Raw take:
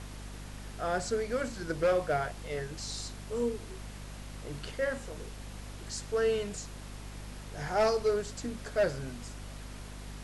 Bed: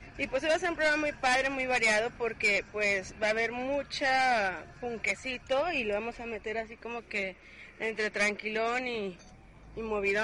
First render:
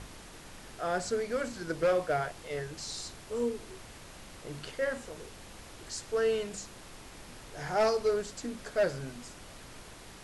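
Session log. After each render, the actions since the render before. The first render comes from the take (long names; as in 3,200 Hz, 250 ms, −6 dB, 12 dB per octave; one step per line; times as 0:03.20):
hum removal 50 Hz, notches 5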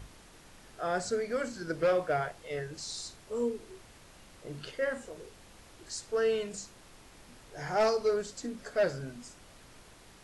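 noise reduction from a noise print 6 dB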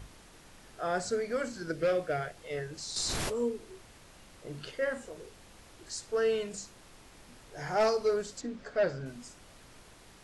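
0:01.71–0:02.37: parametric band 950 Hz −11.5 dB 0.6 octaves
0:02.96–0:03.36: envelope flattener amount 100%
0:08.41–0:09.06: high-frequency loss of the air 100 metres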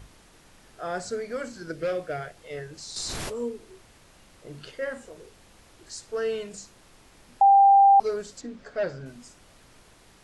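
0:07.41–0:08.00: beep over 792 Hz −12 dBFS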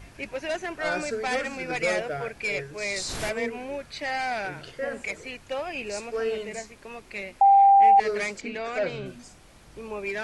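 mix in bed −2.5 dB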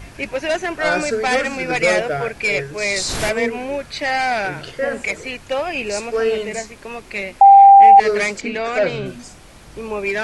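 level +9.5 dB
brickwall limiter −2 dBFS, peak gain reduction 1 dB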